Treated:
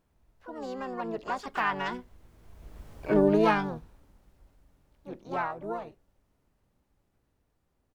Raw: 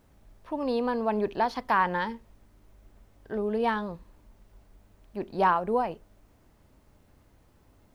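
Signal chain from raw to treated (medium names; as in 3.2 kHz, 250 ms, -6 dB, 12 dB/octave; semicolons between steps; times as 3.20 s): Doppler pass-by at 2.96 s, 25 m/s, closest 6.7 m; harmony voices -5 st -8 dB, +7 st -5 dB; trim +8.5 dB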